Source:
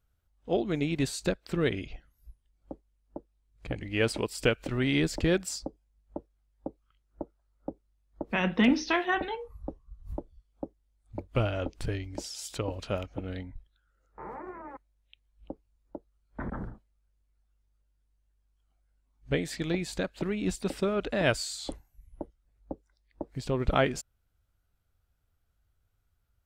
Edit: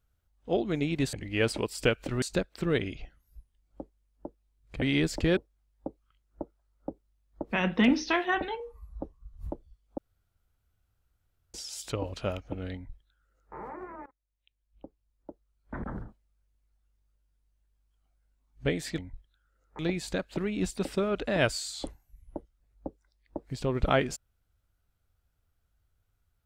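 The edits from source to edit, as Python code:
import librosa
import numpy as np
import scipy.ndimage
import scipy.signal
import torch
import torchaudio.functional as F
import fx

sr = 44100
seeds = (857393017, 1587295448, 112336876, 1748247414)

y = fx.edit(x, sr, fx.move(start_s=3.73, length_s=1.09, to_s=1.13),
    fx.cut(start_s=5.37, length_s=0.8),
    fx.stretch_span(start_s=9.4, length_s=0.28, factor=1.5),
    fx.room_tone_fill(start_s=10.64, length_s=1.56),
    fx.duplicate(start_s=13.4, length_s=0.81, to_s=19.64),
    fx.fade_in_from(start_s=14.72, length_s=1.99, floor_db=-19.5), tone=tone)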